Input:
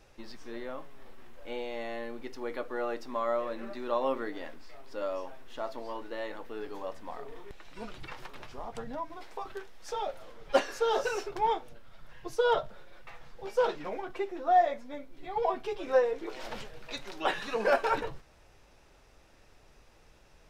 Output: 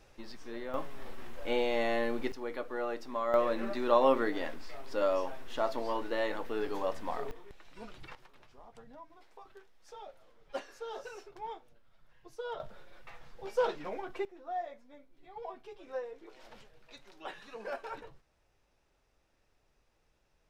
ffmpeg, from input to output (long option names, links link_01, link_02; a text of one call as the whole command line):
ffmpeg -i in.wav -af "asetnsamples=nb_out_samples=441:pad=0,asendcmd='0.74 volume volume 7dB;2.32 volume volume -2dB;3.34 volume volume 5dB;7.31 volume volume -5.5dB;8.15 volume volume -14dB;12.6 volume volume -2.5dB;14.25 volume volume -14dB',volume=-1dB" out.wav